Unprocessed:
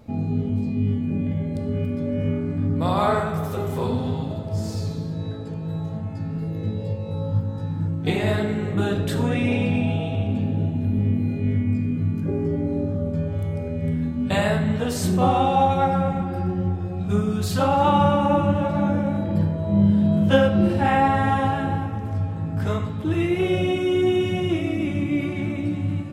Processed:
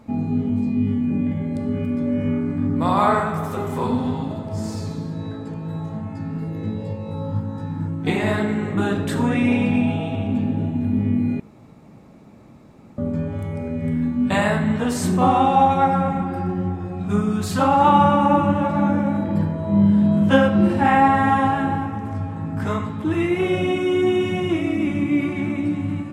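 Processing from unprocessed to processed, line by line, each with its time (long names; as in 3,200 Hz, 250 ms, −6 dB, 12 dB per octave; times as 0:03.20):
0:11.40–0:12.98: fill with room tone
whole clip: octave-band graphic EQ 250/1,000/2,000/8,000 Hz +9/+9/+6/+6 dB; level −4 dB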